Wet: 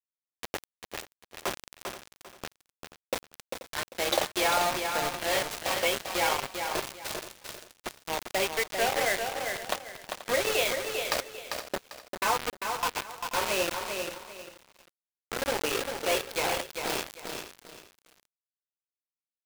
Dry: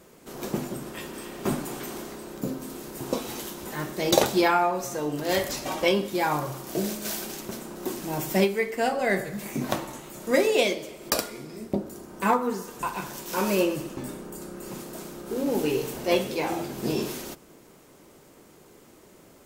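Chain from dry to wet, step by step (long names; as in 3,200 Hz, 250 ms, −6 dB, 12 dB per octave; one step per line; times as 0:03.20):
Chebyshev band-pass filter 560–3,300 Hz, order 2
high-shelf EQ 2,400 Hz +4.5 dB
downward compressor 2 to 1, threshold −30 dBFS, peak gain reduction 9 dB
bit reduction 5 bits
single-tap delay 483 ms −15 dB
feedback echo at a low word length 396 ms, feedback 35%, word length 8 bits, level −5.5 dB
level +1.5 dB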